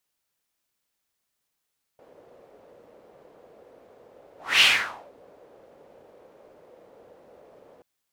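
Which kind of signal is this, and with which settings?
whoosh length 5.83 s, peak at 2.62, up 0.26 s, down 0.54 s, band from 520 Hz, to 2900 Hz, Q 3.3, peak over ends 36 dB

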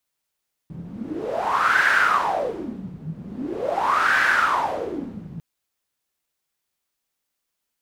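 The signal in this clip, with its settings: wind-like swept noise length 4.70 s, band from 160 Hz, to 1600 Hz, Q 7.7, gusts 2, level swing 17 dB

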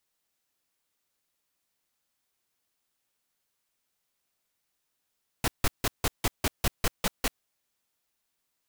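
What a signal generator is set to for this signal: noise bursts pink, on 0.04 s, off 0.16 s, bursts 10, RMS -24.5 dBFS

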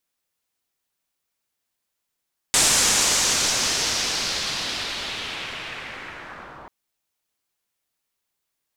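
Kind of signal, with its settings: swept filtered noise white, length 4.14 s lowpass, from 7800 Hz, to 950 Hz, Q 1.8, linear, gain ramp -16.5 dB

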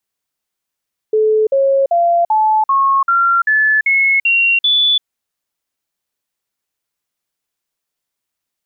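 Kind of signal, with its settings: stepped sine 433 Hz up, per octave 3, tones 10, 0.34 s, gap 0.05 s -9.5 dBFS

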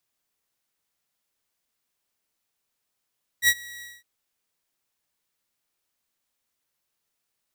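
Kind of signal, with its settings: ADSR saw 1920 Hz, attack 62 ms, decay 55 ms, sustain -24 dB, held 0.40 s, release 0.21 s -11.5 dBFS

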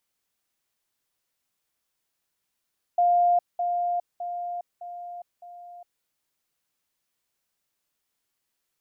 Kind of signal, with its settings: level ladder 703 Hz -17 dBFS, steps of -6 dB, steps 5, 0.41 s 0.20 s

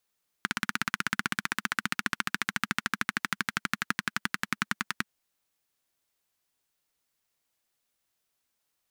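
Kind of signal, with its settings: single-cylinder engine model, changing speed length 4.64 s, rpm 2000, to 1200, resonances 210/1500 Hz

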